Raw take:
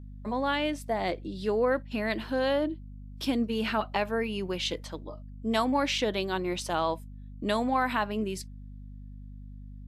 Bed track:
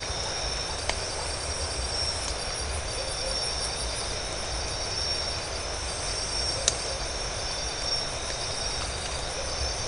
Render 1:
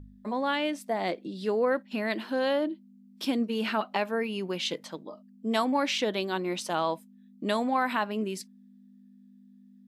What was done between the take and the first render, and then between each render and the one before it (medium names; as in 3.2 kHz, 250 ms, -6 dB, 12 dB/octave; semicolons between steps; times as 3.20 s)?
de-hum 50 Hz, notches 3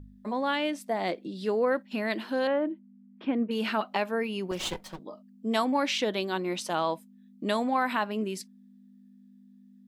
2.47–3.51 s: low-pass 2.3 kHz 24 dB/octave; 4.51–4.99 s: comb filter that takes the minimum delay 5.4 ms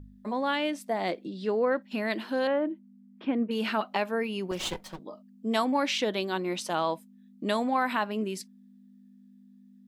1.29–1.82 s: distance through air 75 m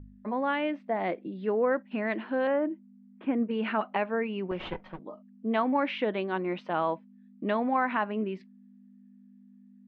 low-pass 2.5 kHz 24 dB/octave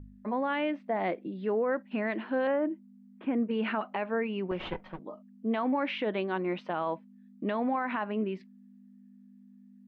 peak limiter -21.5 dBFS, peak gain reduction 6 dB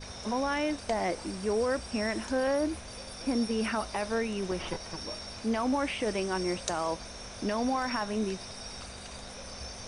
add bed track -12 dB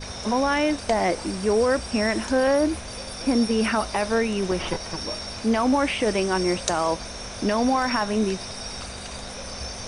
trim +8 dB